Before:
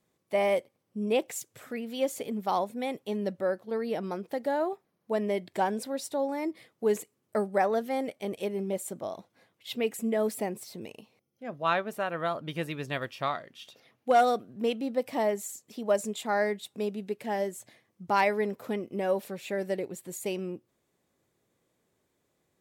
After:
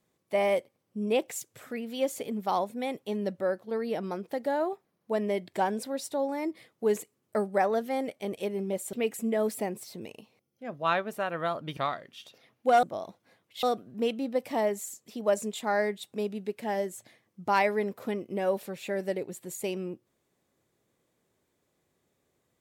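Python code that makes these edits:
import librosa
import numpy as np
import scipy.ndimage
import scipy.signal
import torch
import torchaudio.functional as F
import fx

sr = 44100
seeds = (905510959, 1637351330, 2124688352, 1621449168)

y = fx.edit(x, sr, fx.move(start_s=8.93, length_s=0.8, to_s=14.25),
    fx.cut(start_s=12.57, length_s=0.62), tone=tone)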